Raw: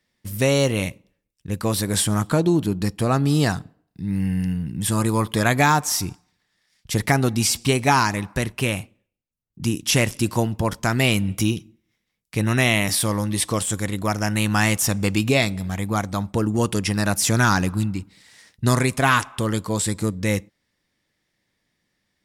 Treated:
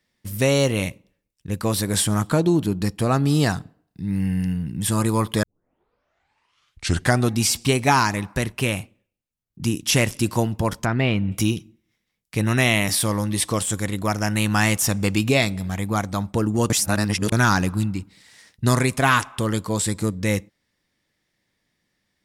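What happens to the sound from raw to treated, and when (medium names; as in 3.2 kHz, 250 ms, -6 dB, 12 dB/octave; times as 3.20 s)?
5.43 s: tape start 1.90 s
10.85–11.32 s: distance through air 350 m
16.70–17.32 s: reverse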